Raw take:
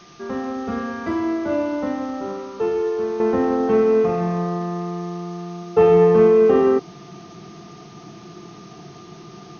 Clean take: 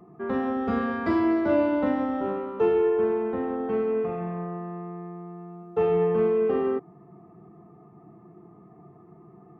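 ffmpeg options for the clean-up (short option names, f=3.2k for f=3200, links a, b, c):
-af "bandreject=f=1.2k:w=30,afwtdn=0.005,asetnsamples=n=441:p=0,asendcmd='3.2 volume volume -9.5dB',volume=0dB"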